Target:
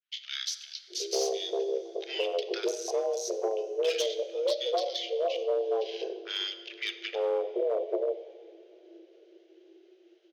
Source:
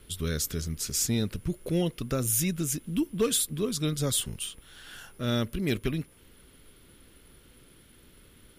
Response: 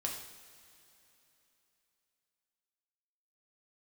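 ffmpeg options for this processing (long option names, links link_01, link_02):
-filter_complex "[0:a]acrossover=split=1000[link_01][link_02];[link_01]adelay=730[link_03];[link_03][link_02]amix=inputs=2:normalize=0,acrossover=split=2500[link_04][link_05];[link_05]dynaudnorm=framelen=120:gausssize=3:maxgain=7dB[link_06];[link_04][link_06]amix=inputs=2:normalize=0,agate=range=-33dB:threshold=-49dB:ratio=3:detection=peak,acrossover=split=440|2300[link_07][link_08][link_09];[link_07]acompressor=threshold=-29dB:ratio=4[link_10];[link_08]acompressor=threshold=-49dB:ratio=4[link_11];[link_09]acompressor=threshold=-34dB:ratio=4[link_12];[link_10][link_11][link_12]amix=inputs=3:normalize=0,aresample=16000,aresample=44100,afwtdn=0.00631,asplit=2[link_13][link_14];[1:a]atrim=start_sample=2205,highshelf=frequency=7500:gain=-9[link_15];[link_14][link_15]afir=irnorm=-1:irlink=0,volume=-4dB[link_16];[link_13][link_16]amix=inputs=2:normalize=0,asetrate=36647,aresample=44100,asoftclip=type=hard:threshold=-21.5dB,bandreject=frequency=47.68:width_type=h:width=4,bandreject=frequency=95.36:width_type=h:width=4,bandreject=frequency=143.04:width_type=h:width=4,bandreject=frequency=190.72:width_type=h:width=4,bandreject=frequency=238.4:width_type=h:width=4,bandreject=frequency=286.08:width_type=h:width=4,bandreject=frequency=333.76:width_type=h:width=4,bandreject=frequency=381.44:width_type=h:width=4,bandreject=frequency=429.12:width_type=h:width=4,bandreject=frequency=476.8:width_type=h:width=4,afreqshift=330"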